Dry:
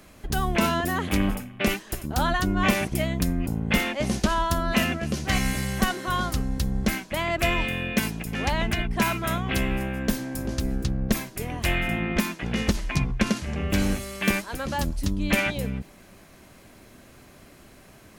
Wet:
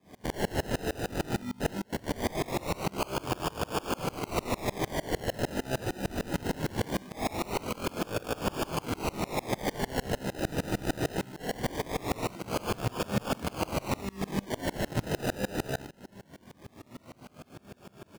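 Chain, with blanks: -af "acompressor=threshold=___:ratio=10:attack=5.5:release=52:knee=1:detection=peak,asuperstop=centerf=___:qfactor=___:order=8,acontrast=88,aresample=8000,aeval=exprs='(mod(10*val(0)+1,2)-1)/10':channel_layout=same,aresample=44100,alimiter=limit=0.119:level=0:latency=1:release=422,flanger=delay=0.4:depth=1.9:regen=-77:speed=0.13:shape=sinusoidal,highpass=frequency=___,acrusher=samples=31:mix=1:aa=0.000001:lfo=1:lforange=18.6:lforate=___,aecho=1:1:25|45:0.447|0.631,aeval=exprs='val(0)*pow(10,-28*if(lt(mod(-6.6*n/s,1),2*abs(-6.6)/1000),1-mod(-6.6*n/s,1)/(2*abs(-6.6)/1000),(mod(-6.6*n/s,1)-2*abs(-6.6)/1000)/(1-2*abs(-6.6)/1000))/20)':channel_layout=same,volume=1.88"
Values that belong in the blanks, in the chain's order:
0.0501, 2300, 0.71, 97, 0.21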